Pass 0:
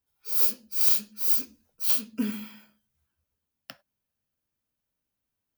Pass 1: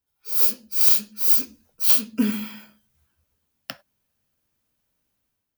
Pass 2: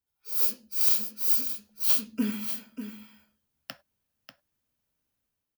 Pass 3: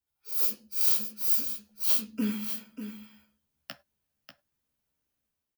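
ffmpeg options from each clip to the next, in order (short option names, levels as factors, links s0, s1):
-af "dynaudnorm=f=160:g=5:m=2.99"
-af "aecho=1:1:591:0.316,volume=0.473"
-filter_complex "[0:a]asplit=2[s0][s1];[s1]adelay=14,volume=0.531[s2];[s0][s2]amix=inputs=2:normalize=0,volume=0.75"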